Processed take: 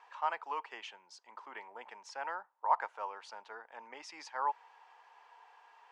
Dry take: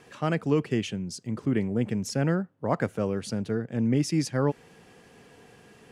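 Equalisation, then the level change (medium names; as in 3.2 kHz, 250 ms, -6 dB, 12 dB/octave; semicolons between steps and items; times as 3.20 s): ladder high-pass 870 Hz, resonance 80%; distance through air 130 m; +4.5 dB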